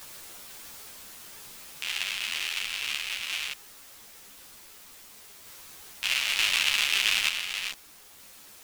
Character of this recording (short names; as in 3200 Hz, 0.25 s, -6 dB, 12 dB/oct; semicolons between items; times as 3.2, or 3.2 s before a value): a quantiser's noise floor 8-bit, dither triangular; random-step tremolo 1.1 Hz; a shimmering, thickened sound